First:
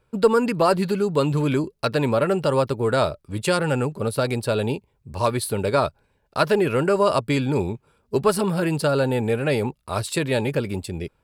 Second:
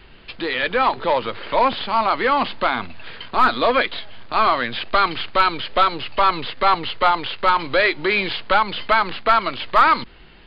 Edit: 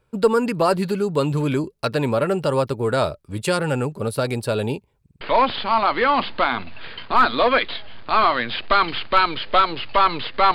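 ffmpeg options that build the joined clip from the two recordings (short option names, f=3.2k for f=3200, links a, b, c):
-filter_complex "[0:a]apad=whole_dur=10.54,atrim=end=10.54,asplit=4[a][b][c][d];[a]atrim=end=5.062[e];[b]atrim=start=5.008:end=5.062[f];[c]atrim=start=5.008:end=5.062[g];[d]atrim=start=5.008:end=5.062[h];[1:a]atrim=start=1.438:end=6.77[i];[e][f]acrossfade=d=0.004:c1=hsin:c2=hsin[j];[j][g]acrossfade=d=0.004:c1=hsin:c2=hsin[k];[k][h]acrossfade=d=0.004:c1=hsin:c2=hsin[l];[l][i]acrossfade=d=0.004:c1=hsin:c2=hsin"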